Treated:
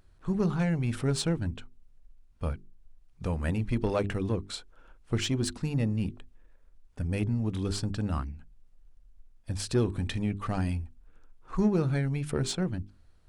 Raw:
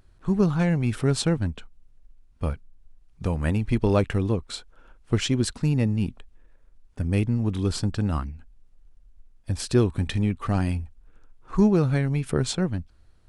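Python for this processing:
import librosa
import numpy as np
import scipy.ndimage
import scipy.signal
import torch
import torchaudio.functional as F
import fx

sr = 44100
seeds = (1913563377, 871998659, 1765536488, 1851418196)

p1 = fx.hum_notches(x, sr, base_hz=50, count=8)
p2 = 10.0 ** (-24.0 / 20.0) * np.tanh(p1 / 10.0 ** (-24.0 / 20.0))
p3 = p1 + F.gain(torch.from_numpy(p2), -3.0).numpy()
y = F.gain(torch.from_numpy(p3), -7.5).numpy()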